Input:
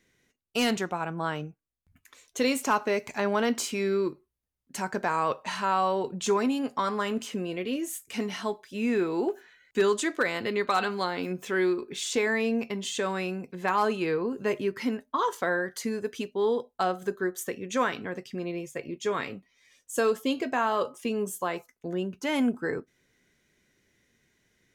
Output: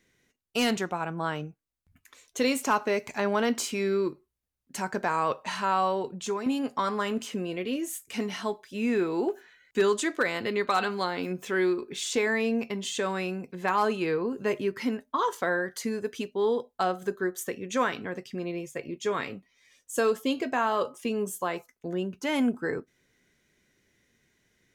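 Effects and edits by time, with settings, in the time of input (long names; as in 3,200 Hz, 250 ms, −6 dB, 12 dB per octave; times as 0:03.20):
0:05.84–0:06.46: fade out, to −8.5 dB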